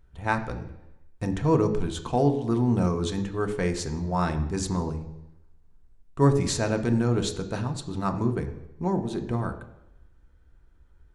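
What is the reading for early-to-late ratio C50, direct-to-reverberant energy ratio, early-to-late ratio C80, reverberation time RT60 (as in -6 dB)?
11.0 dB, 5.0 dB, 13.5 dB, 0.90 s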